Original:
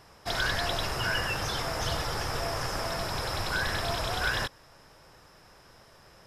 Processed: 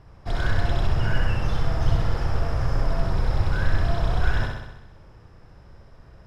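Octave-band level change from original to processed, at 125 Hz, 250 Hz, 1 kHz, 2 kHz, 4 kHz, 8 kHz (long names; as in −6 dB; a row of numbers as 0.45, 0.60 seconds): +12.0 dB, +7.0 dB, −0.5 dB, −2.5 dB, −7.5 dB, below −10 dB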